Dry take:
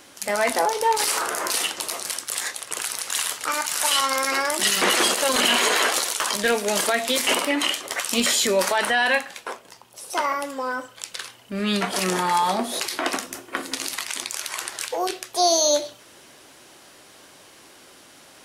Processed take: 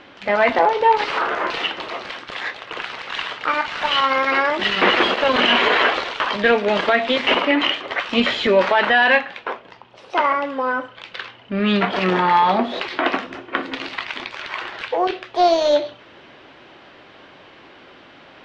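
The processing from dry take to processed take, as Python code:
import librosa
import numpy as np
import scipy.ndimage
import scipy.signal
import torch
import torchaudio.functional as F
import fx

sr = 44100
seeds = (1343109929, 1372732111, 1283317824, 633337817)

y = fx.self_delay(x, sr, depth_ms=0.057)
y = scipy.signal.sosfilt(scipy.signal.butter(4, 3300.0, 'lowpass', fs=sr, output='sos'), y)
y = F.gain(torch.from_numpy(y), 6.0).numpy()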